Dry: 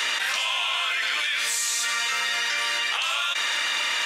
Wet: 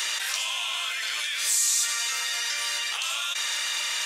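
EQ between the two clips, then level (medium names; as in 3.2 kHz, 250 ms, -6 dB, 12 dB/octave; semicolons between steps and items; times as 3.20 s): high-pass 91 Hz; tone controls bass -9 dB, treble +12 dB; -7.0 dB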